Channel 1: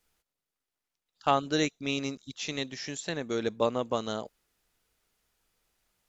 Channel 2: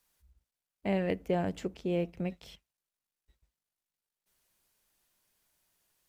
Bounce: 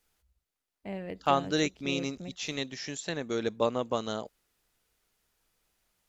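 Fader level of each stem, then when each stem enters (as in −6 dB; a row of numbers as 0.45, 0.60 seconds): −0.5, −8.0 decibels; 0.00, 0.00 seconds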